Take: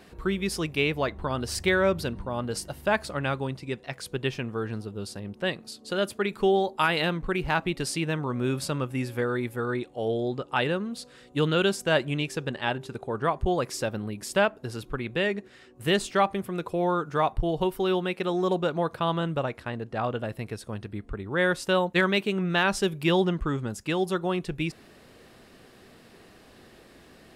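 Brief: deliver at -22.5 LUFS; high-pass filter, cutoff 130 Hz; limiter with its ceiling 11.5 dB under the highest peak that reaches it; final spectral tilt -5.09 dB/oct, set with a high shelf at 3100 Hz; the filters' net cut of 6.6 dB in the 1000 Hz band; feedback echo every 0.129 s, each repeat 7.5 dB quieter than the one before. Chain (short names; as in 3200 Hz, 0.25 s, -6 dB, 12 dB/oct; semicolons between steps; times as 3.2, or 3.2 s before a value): HPF 130 Hz; bell 1000 Hz -8.5 dB; high shelf 3100 Hz -5.5 dB; limiter -24 dBFS; feedback echo 0.129 s, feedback 42%, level -7.5 dB; gain +11.5 dB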